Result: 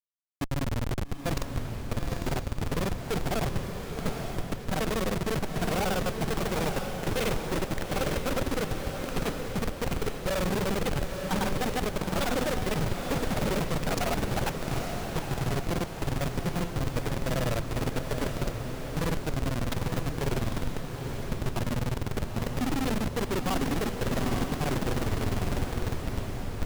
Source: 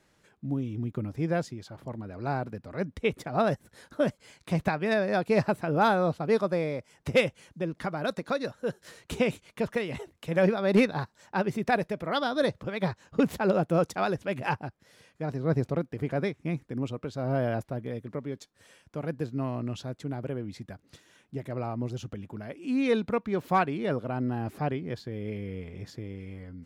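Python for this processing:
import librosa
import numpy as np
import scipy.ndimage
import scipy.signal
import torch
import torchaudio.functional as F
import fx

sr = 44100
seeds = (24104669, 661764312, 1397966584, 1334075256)

p1 = fx.granulator(x, sr, seeds[0], grain_ms=51.0, per_s=20.0, spray_ms=100.0, spread_st=0)
p2 = fx.cheby_harmonics(p1, sr, harmonics=(3, 5, 7, 8), levels_db=(-26, -15, -17, -43), full_scale_db=-13.0)
p3 = fx.schmitt(p2, sr, flips_db=-41.0)
p4 = p3 + fx.echo_diffused(p3, sr, ms=865, feedback_pct=51, wet_db=-5, dry=0)
y = p4 * librosa.db_to_amplitude(6.5)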